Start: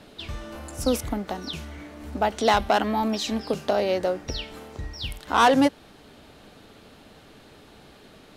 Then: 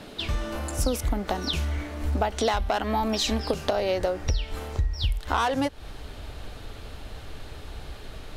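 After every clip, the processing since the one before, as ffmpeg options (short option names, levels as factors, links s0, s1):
-af "asubboost=boost=10.5:cutoff=64,acompressor=threshold=0.0447:ratio=12,volume=2"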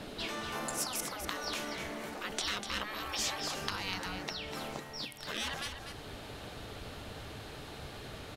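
-filter_complex "[0:a]afftfilt=real='re*lt(hypot(re,im),0.0891)':imag='im*lt(hypot(re,im),0.0891)':win_size=1024:overlap=0.75,asplit=2[s0][s1];[s1]aecho=0:1:246:0.398[s2];[s0][s2]amix=inputs=2:normalize=0,volume=0.841"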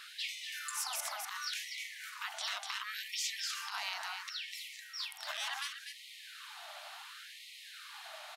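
-af "alimiter=level_in=1.26:limit=0.0631:level=0:latency=1:release=74,volume=0.794,afftfilt=real='re*gte(b*sr/1024,570*pow(1900/570,0.5+0.5*sin(2*PI*0.7*pts/sr)))':imag='im*gte(b*sr/1024,570*pow(1900/570,0.5+0.5*sin(2*PI*0.7*pts/sr)))':win_size=1024:overlap=0.75,volume=1.12"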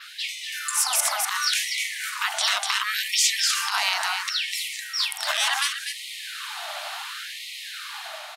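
-af "dynaudnorm=f=330:g=5:m=2.11,adynamicequalizer=threshold=0.00251:dfrequency=9000:dqfactor=1.8:tfrequency=9000:tqfactor=1.8:attack=5:release=100:ratio=0.375:range=3:mode=boostabove:tftype=bell,volume=2.66"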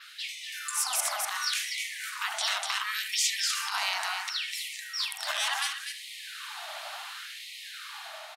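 -filter_complex "[0:a]asplit=2[s0][s1];[s1]adelay=75,lowpass=f=1100:p=1,volume=0.668,asplit=2[s2][s3];[s3]adelay=75,lowpass=f=1100:p=1,volume=0.3,asplit=2[s4][s5];[s5]adelay=75,lowpass=f=1100:p=1,volume=0.3,asplit=2[s6][s7];[s7]adelay=75,lowpass=f=1100:p=1,volume=0.3[s8];[s0][s2][s4][s6][s8]amix=inputs=5:normalize=0,volume=0.473"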